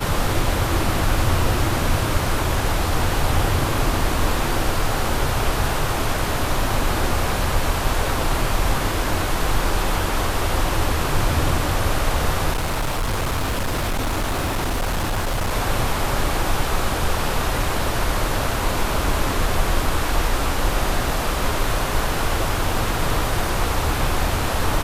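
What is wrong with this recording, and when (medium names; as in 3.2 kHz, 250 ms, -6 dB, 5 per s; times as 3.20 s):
12.52–15.52 s: clipped -18.5 dBFS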